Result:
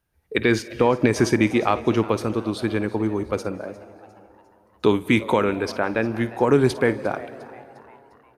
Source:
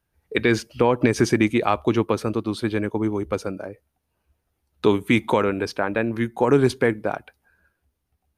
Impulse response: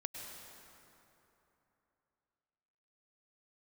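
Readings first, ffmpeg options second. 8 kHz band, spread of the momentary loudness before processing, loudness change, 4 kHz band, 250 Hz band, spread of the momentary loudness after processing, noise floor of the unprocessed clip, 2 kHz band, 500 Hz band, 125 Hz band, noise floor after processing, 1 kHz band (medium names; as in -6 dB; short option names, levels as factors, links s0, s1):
0.0 dB, 9 LU, 0.0 dB, 0.0 dB, 0.0 dB, 11 LU, -76 dBFS, 0.0 dB, 0.0 dB, 0.0 dB, -58 dBFS, +0.5 dB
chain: -filter_complex "[0:a]asplit=5[s0][s1][s2][s3][s4];[s1]adelay=353,afreqshift=140,volume=0.1[s5];[s2]adelay=706,afreqshift=280,volume=0.0468[s6];[s3]adelay=1059,afreqshift=420,volume=0.0221[s7];[s4]adelay=1412,afreqshift=560,volume=0.0104[s8];[s0][s5][s6][s7][s8]amix=inputs=5:normalize=0,asplit=2[s9][s10];[1:a]atrim=start_sample=2205,adelay=54[s11];[s10][s11]afir=irnorm=-1:irlink=0,volume=0.211[s12];[s9][s12]amix=inputs=2:normalize=0"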